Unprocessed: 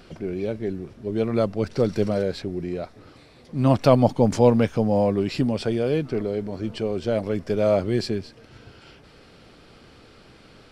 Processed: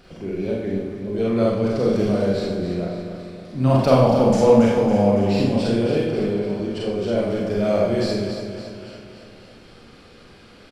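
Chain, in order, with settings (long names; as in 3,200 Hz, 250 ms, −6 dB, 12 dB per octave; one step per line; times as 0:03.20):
repeating echo 279 ms, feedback 54%, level −9 dB
four-comb reverb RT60 0.71 s, combs from 31 ms, DRR −4 dB
level −3 dB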